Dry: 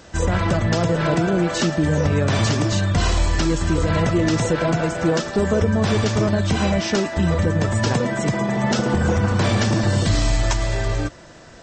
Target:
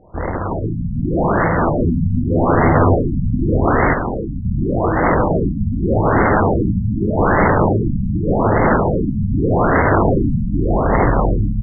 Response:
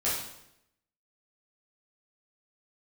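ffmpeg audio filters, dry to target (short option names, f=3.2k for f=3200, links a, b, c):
-filter_complex "[0:a]asplit=2[a][b];[b]aecho=0:1:690|1311|1870|2373|2826:0.631|0.398|0.251|0.158|0.1[c];[a][c]amix=inputs=2:normalize=0,acrusher=samples=20:mix=1:aa=0.000001:lfo=1:lforange=20:lforate=1.2,asettb=1/sr,asplit=3[d][e][f];[d]atrim=end=3.934[g];[e]atrim=start=3.93:end=4.45,asetpts=PTS-STARTPTS,afade=t=in:d=0.004:c=qsin,afade=t=out:st=0.516:d=0.004:c=qsin,lowpass=f=3.1k:t=q:w=0.5098,lowpass=f=3.1k:t=q:w=0.6013,lowpass=f=3.1k:t=q:w=0.9,lowpass=f=3.1k:t=q:w=2.563,afreqshift=-3700[h];[f]atrim=start=4.446[i];[g][h]acrossfade=d=0.004:c1=hsin:c2=qsin[j];[j][i]acrossfade=d=0.004:c1=qsin:c2=hsin,equalizer=f=200:t=o:w=2.3:g=-3,aeval=exprs='(mod(5.31*val(0)+1,2)-1)/5.31':c=same,asettb=1/sr,asplit=3[k][l][m];[k]atrim=end=1.834[n];[l]atrim=start=1.83:end=2.96,asetpts=PTS-STARTPTS,afade=t=in:d=0.004:c=qsin,afade=t=out:st=1.126:d=0.004:c=qsin,asplit=2[o][p];[p]adelay=12,volume=-2dB[q];[o][q]amix=inputs=2:normalize=0,atrim=end_sample=49833[r];[m]atrim=start=2.956[s];[n][r]acrossfade=d=0.004:c1=hsin:c2=qsin[t];[t][s]acrossfade=d=0.004:c1=qsin:c2=hsin,dynaudnorm=f=200:g=7:m=7.5dB,asplit=2[u][v];[v]aecho=0:1:737:0.501[w];[u][w]amix=inputs=2:normalize=0,afftfilt=real='re*lt(b*sr/1024,240*pow(2200/240,0.5+0.5*sin(2*PI*0.84*pts/sr)))':imag='im*lt(b*sr/1024,240*pow(2200/240,0.5+0.5*sin(2*PI*0.84*pts/sr)))':win_size=1024:overlap=0.75,volume=-1dB"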